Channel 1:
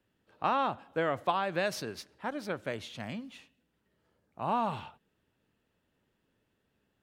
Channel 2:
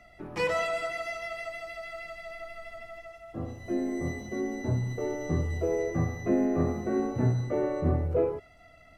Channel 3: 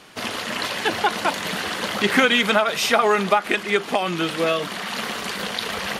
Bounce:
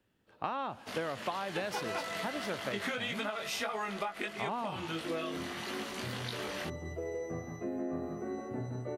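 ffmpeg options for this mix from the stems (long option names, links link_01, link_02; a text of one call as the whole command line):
ffmpeg -i stem1.wav -i stem2.wav -i stem3.wav -filter_complex "[0:a]volume=1dB[link_01];[1:a]lowshelf=frequency=130:gain=-11.5,adelay=1350,volume=-9dB,asplit=2[link_02][link_03];[link_03]volume=-4dB[link_04];[2:a]flanger=delay=18:depth=2.7:speed=1.6,adelay=700,volume=-10dB[link_05];[link_04]aecho=0:1:171:1[link_06];[link_01][link_02][link_05][link_06]amix=inputs=4:normalize=0,acompressor=threshold=-32dB:ratio=6" out.wav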